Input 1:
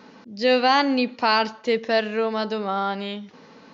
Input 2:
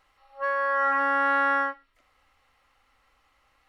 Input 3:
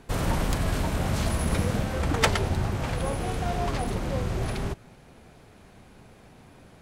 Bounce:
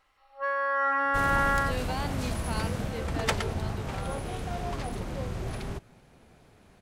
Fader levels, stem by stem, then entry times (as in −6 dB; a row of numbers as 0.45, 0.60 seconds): −17.5, −2.5, −5.5 decibels; 1.25, 0.00, 1.05 seconds